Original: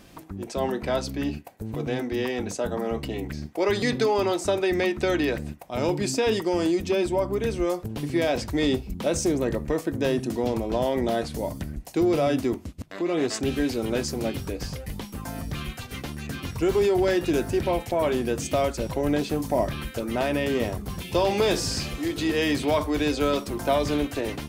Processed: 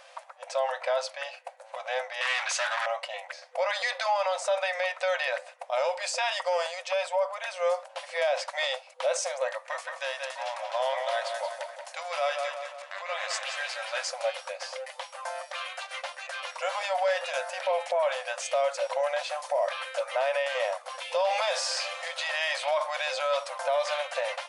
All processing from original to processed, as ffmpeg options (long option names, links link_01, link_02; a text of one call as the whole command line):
ffmpeg -i in.wav -filter_complex "[0:a]asettb=1/sr,asplit=3[link_01][link_02][link_03];[link_01]atrim=end=2.214[link_04];[link_02]atrim=start=2.21:end=2.86,asetpts=PTS-STARTPTS,afade=type=in:duration=0.004:curve=qsin,afade=type=out:start_time=0.646:duration=0.004:curve=qsin,asplit=2[link_05][link_06];[link_06]highpass=frequency=720:poles=1,volume=25dB,asoftclip=type=tanh:threshold=-16dB[link_07];[link_05][link_07]amix=inputs=2:normalize=0,lowpass=frequency=4400:poles=1,volume=-6dB,highpass=1400[link_08];[link_03]atrim=start=2.856[link_09];[link_04][link_08]acrossfade=duration=0.004:curve1=hsin:curve2=qsin[link_10];[link_10][link_09]acrossfade=duration=0.004:curve1=qsin:curve2=hsin,asettb=1/sr,asplit=3[link_11][link_12][link_13];[link_11]atrim=end=9.534[link_14];[link_12]atrim=start=9.53:end=14.11,asetpts=PTS-STARTPTS,afade=type=in:duration=0.004:curve=qsin,afade=type=out:start_time=4.576:duration=0.004:curve=qsin,highpass=950,acompressor=mode=upward:threshold=-44dB:ratio=2.5:attack=3.2:release=140:knee=2.83:detection=peak,asplit=2[link_15][link_16];[link_16]adelay=179,lowpass=frequency=4500:poles=1,volume=-5.5dB,asplit=2[link_17][link_18];[link_18]adelay=179,lowpass=frequency=4500:poles=1,volume=0.52,asplit=2[link_19][link_20];[link_20]adelay=179,lowpass=frequency=4500:poles=1,volume=0.52,asplit=2[link_21][link_22];[link_22]adelay=179,lowpass=frequency=4500:poles=1,volume=0.52,asplit=2[link_23][link_24];[link_24]adelay=179,lowpass=frequency=4500:poles=1,volume=0.52,asplit=2[link_25][link_26];[link_26]adelay=179,lowpass=frequency=4500:poles=1,volume=0.52,asplit=2[link_27][link_28];[link_28]adelay=179,lowpass=frequency=4500:poles=1,volume=0.52[link_29];[link_15][link_17][link_19][link_21][link_23][link_25][link_27][link_29]amix=inputs=8:normalize=0,atrim=end_sample=201978[link_30];[link_13]atrim=start=14.106[link_31];[link_14][link_30]acrossfade=duration=0.004:curve1=hsin:curve2=qsin[link_32];[link_32][link_31]acrossfade=duration=0.004:curve1=qsin:curve2=hsin,afftfilt=real='re*between(b*sr/4096,500,11000)':imag='im*between(b*sr/4096,500,11000)':win_size=4096:overlap=0.75,highshelf=frequency=4600:gain=-10,alimiter=limit=-23.5dB:level=0:latency=1:release=42,volume=5dB" out.wav